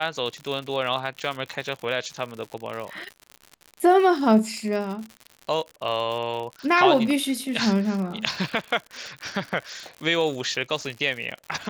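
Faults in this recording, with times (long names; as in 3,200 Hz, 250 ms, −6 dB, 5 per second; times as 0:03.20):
surface crackle 98 per second −31 dBFS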